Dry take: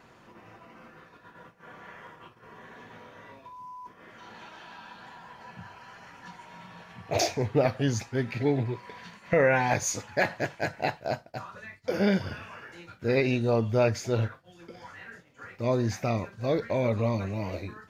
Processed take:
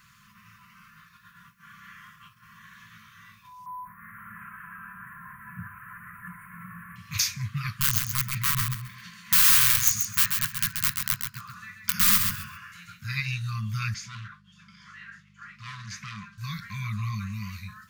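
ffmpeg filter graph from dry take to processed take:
-filter_complex "[0:a]asettb=1/sr,asplit=3[a][b][c];[a]atrim=end=3.664[d];[b]atrim=start=3.66:end=6.96,asetpts=PTS-STARTPTS,afade=t=in:d=0.004:c=qsin,afade=t=out:st=3.296:d=0.004:c=qsin,asuperstop=centerf=4700:order=8:qfactor=0.58,acontrast=84[e];[c]atrim=start=6.956[f];[d][e]acrossfade=d=0.004:c1=hsin:c2=qsin[g];[g][f]acrossfade=d=0.004:c1=qsin:c2=hsin,asettb=1/sr,asplit=3[h][i][j];[h]atrim=end=7.744[k];[i]atrim=start=7.74:end=13.01,asetpts=PTS-STARTPTS,afade=t=in:d=0.004:c=qsin,afade=t=out:st=5.266:d=0.004:c=qsin,aeval=exprs='(mod(11.2*val(0)+1,2)-1)/11.2':c=same,aecho=1:1:133|266|399:0.531|0.111|0.0234,atrim=end_sample=232407[l];[j]atrim=start=13.006[m];[k][l]acrossfade=d=0.004:c1=hsin:c2=qsin[n];[n][m]acrossfade=d=0.004:c1=qsin:c2=hsin,asettb=1/sr,asplit=3[o][p][q];[o]atrim=end=13.944[r];[p]atrim=start=13.94:end=16.38,asetpts=PTS-STARTPTS,afade=t=in:d=0.004:c=qsin,afade=t=out:st=2.436:d=0.004:c=qsin,asoftclip=type=hard:threshold=-29dB,aeval=exprs='val(0)+0.00447*(sin(2*PI*50*n/s)+sin(2*PI*2*50*n/s)/2+sin(2*PI*3*50*n/s)/3+sin(2*PI*4*50*n/s)/4+sin(2*PI*5*50*n/s)/5)':c=same,highpass=170,lowpass=4.9k[s];[q]atrim=start=16.376[t];[r][s]acrossfade=d=0.004:c1=hsin:c2=qsin[u];[u][t]acrossfade=d=0.004:c1=qsin:c2=hsin,aemphasis=mode=production:type=50fm,afftfilt=real='re*(1-between(b*sr/4096,220,1000))':imag='im*(1-between(b*sr/4096,220,1000))':win_size=4096:overlap=0.75,adynamicequalizer=threshold=0.00562:dfrequency=2500:dqfactor=0.7:tfrequency=2500:tqfactor=0.7:attack=5:release=100:ratio=0.375:range=2:mode=cutabove:tftype=highshelf"

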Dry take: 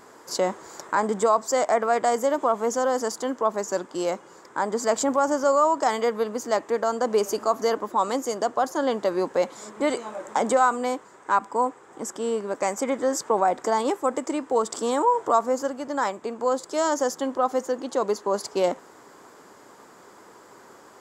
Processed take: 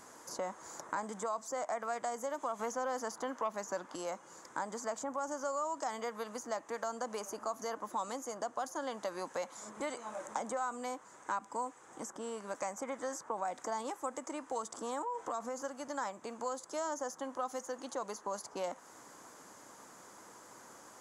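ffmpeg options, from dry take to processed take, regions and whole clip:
-filter_complex "[0:a]asettb=1/sr,asplit=3[a][b][c];[a]atrim=end=2.594[d];[b]atrim=start=2.59:end=3.96,asetpts=PTS-STARTPTS,afade=t=in:d=0.004:c=qsin,afade=t=out:st=1.366:d=0.004:c=qsin,equalizer=f=8.5k:w=0.73:g=-9.5,acontrast=65[e];[c]atrim=start=3.956[f];[d][e]acrossfade=d=0.004:c1=hsin:c2=qsin[g];[g][f]acrossfade=d=0.004:c1=qsin:c2=hsin,asettb=1/sr,asplit=3[h][i][j];[h]atrim=end=15.024[k];[i]atrim=start=15.02:end=15.62,asetpts=PTS-STARTPTS,afade=t=in:d=0.004:c=qsin,afade=t=out:st=0.596:d=0.004:c=qsin,highshelf=f=5.8k:g=-7.5,aecho=1:1:3.9:0.36,atrim=end_sample=26460,acompressor=threshold=-22dB:ratio=4:attack=3.2:release=140:knee=1:detection=peak[l];[j]atrim=start=15.616[m];[k][l]acrossfade=d=0.004:c1=hsin:c2=qsin[n];[n][m]acrossfade=d=0.004:c1=qsin:c2=hsin,equalizer=f=400:t=o:w=0.33:g=-8,equalizer=f=6.3k:t=o:w=0.33:g=9,equalizer=f=10k:t=o:w=0.33:g=12,acrossover=split=720|1700[o][p][q];[o]acompressor=threshold=-38dB:ratio=4[r];[p]acompressor=threshold=-34dB:ratio=4[s];[q]acompressor=threshold=-43dB:ratio=4[t];[r][s][t]amix=inputs=3:normalize=0,volume=-5.5dB"

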